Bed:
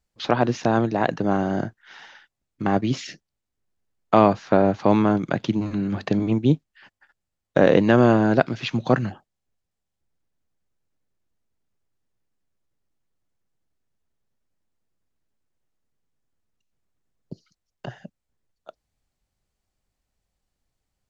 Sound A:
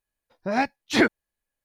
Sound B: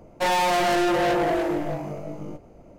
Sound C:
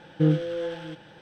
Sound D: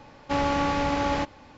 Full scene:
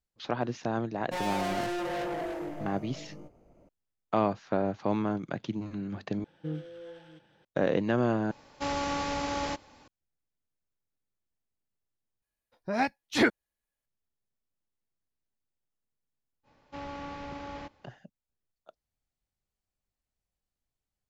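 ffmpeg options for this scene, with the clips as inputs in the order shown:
-filter_complex "[4:a]asplit=2[a][b];[0:a]volume=-11dB[c];[a]bass=f=250:g=-3,treble=f=4k:g=9[d];[b]acrossover=split=6400[e][f];[f]acompressor=threshold=-60dB:ratio=4:attack=1:release=60[g];[e][g]amix=inputs=2:normalize=0[h];[c]asplit=4[i][j][k][l];[i]atrim=end=6.244[m];[3:a]atrim=end=1.21,asetpts=PTS-STARTPTS,volume=-15dB[n];[j]atrim=start=7.446:end=8.314[o];[d]atrim=end=1.57,asetpts=PTS-STARTPTS,volume=-6.5dB[p];[k]atrim=start=9.876:end=12.224[q];[1:a]atrim=end=1.64,asetpts=PTS-STARTPTS,volume=-4.5dB[r];[l]atrim=start=13.856[s];[2:a]atrim=end=2.78,asetpts=PTS-STARTPTS,volume=-11.5dB,afade=t=in:d=0.004:c=hsin,afade=t=out:st=2.776:d=0.004:c=hsin,adelay=910[t];[h]atrim=end=1.57,asetpts=PTS-STARTPTS,volume=-15.5dB,afade=t=in:d=0.05,afade=t=out:st=1.52:d=0.05,adelay=16430[u];[m][n]acrossfade=d=0.004:c1=hsin:c2=hsin[v];[v][o]acrossfade=d=0.004:c1=hsin:c2=hsin[w];[w][p]acrossfade=d=0.004:c1=hsin:c2=hsin[x];[x][q]acrossfade=d=0.004:c1=hsin:c2=hsin[y];[y][r]acrossfade=d=0.004:c1=hsin:c2=hsin[z];[z][s]acrossfade=d=0.004:c1=hsin:c2=hsin[aa];[aa][t][u]amix=inputs=3:normalize=0"

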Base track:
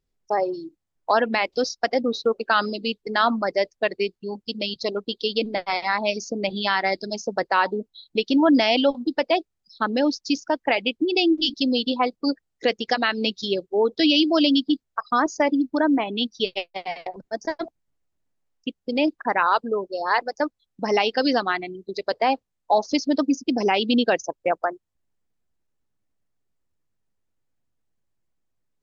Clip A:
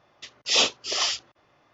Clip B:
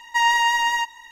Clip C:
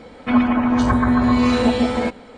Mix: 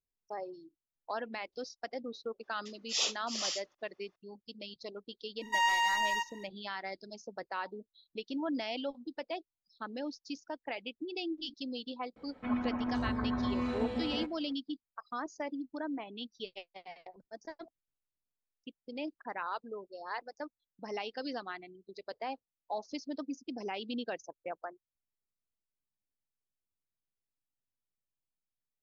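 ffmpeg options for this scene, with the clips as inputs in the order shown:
-filter_complex "[0:a]volume=-18dB[a];[1:a]bass=f=250:g=-12,treble=f=4k:g=8[b];[3:a]highshelf=f=4.3k:g=-11.5[c];[b]atrim=end=1.73,asetpts=PTS-STARTPTS,volume=-15dB,afade=t=in:d=0.004:c=hsin,afade=t=out:st=1.726:d=0.004:c=hsin,adelay=2430[d];[2:a]atrim=end=1.11,asetpts=PTS-STARTPTS,volume=-10dB,afade=t=in:d=0.05,afade=t=out:st=1.06:d=0.05,adelay=5380[e];[c]atrim=end=2.37,asetpts=PTS-STARTPTS,volume=-17dB,afade=t=in:d=0.004:c=hsin,afade=t=out:st=2.366:d=0.004:c=hsin,adelay=12160[f];[a][d][e][f]amix=inputs=4:normalize=0"

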